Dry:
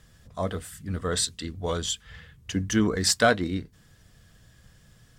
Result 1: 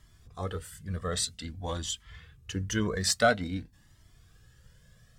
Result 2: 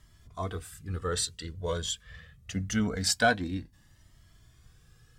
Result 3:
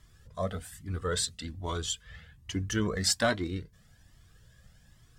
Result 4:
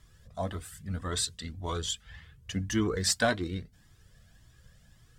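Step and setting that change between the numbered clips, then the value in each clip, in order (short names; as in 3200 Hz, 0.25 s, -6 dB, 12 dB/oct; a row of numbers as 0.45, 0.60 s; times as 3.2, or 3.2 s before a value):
cascading flanger, rate: 0.5, 0.24, 1.2, 1.8 Hz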